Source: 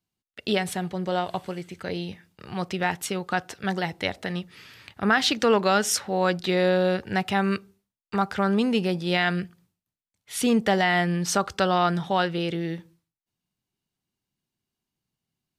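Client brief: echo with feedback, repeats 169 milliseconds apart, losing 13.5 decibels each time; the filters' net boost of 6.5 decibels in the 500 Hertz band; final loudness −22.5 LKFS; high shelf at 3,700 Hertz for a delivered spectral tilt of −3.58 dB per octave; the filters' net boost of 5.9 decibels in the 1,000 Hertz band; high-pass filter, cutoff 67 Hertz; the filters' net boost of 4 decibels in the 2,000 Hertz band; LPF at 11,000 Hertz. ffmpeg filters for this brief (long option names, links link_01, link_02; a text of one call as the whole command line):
ffmpeg -i in.wav -af "highpass=67,lowpass=11000,equalizer=frequency=500:width_type=o:gain=6.5,equalizer=frequency=1000:width_type=o:gain=5,equalizer=frequency=2000:width_type=o:gain=3.5,highshelf=frequency=3700:gain=-3,aecho=1:1:169|338:0.211|0.0444,volume=-2dB" out.wav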